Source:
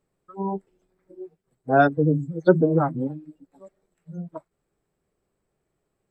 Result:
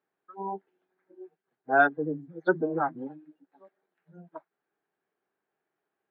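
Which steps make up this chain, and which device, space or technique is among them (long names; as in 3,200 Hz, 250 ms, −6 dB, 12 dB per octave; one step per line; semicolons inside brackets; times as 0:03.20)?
phone earpiece (loudspeaker in its box 330–3,700 Hz, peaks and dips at 540 Hz −6 dB, 810 Hz +5 dB, 1,600 Hz +9 dB)
level −5 dB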